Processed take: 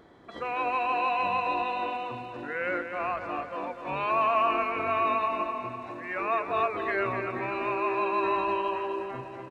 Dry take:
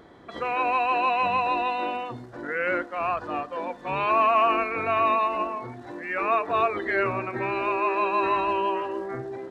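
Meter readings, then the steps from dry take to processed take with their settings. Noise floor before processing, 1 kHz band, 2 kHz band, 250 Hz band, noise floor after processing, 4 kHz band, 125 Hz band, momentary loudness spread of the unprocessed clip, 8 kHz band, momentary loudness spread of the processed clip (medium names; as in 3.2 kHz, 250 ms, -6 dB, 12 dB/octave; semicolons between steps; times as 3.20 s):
-45 dBFS, -3.5 dB, -3.5 dB, -3.5 dB, -42 dBFS, -3.5 dB, -4.0 dB, 11 LU, no reading, 10 LU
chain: feedback delay 249 ms, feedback 53%, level -8 dB; trim -4.5 dB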